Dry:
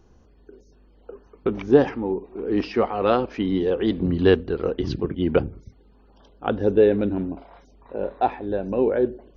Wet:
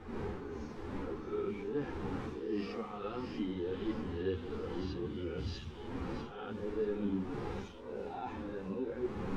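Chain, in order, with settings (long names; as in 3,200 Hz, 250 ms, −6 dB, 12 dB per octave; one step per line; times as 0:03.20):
peak hold with a rise ahead of every peak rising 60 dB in 0.50 s
wind on the microphone 520 Hz −26 dBFS
camcorder AGC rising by 18 dB per second
mains-hum notches 50/100/150/200 Hz
delay with a high-pass on its return 644 ms, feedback 57%, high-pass 3,800 Hz, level −4 dB
reversed playback
downward compressor 6 to 1, threshold −30 dBFS, peak gain reduction 20 dB
reversed playback
parametric band 630 Hz −10.5 dB 0.55 octaves
harmonic and percussive parts rebalanced percussive −16 dB
string-ensemble chorus
level +1.5 dB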